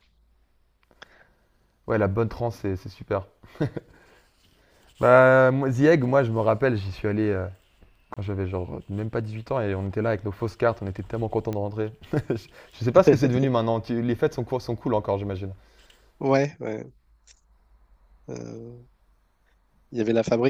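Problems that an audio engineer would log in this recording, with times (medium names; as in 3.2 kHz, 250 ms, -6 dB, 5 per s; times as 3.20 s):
8.14–8.17 s: dropout 26 ms
11.53 s: pop -18 dBFS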